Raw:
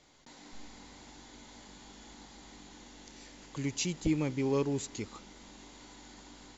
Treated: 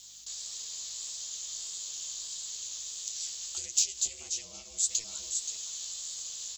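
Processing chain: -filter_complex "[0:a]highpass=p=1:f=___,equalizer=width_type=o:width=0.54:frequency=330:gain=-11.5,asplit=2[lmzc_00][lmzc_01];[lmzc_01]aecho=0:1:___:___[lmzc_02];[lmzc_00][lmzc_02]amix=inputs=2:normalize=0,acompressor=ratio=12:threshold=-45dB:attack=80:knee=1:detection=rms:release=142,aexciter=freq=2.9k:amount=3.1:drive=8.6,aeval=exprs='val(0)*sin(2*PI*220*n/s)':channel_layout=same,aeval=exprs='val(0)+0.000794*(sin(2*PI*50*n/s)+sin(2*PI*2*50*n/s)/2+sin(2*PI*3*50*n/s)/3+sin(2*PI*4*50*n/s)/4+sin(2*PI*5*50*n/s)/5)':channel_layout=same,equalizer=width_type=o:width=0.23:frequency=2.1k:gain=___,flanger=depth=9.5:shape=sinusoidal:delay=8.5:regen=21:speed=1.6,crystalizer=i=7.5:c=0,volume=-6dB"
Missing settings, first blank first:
140, 524, 0.282, -2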